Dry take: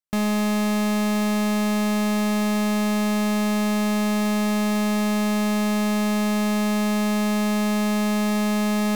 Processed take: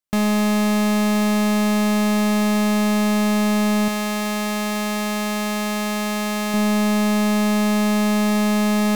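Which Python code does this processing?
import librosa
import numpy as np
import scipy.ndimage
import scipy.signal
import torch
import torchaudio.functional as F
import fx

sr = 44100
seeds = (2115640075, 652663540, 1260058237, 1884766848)

y = fx.low_shelf(x, sr, hz=430.0, db=-8.5, at=(3.88, 6.54))
y = y * librosa.db_to_amplitude(3.5)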